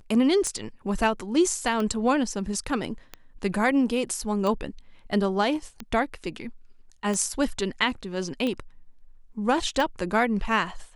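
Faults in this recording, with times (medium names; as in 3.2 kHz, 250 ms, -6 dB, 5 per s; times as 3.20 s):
tick 45 rpm -17 dBFS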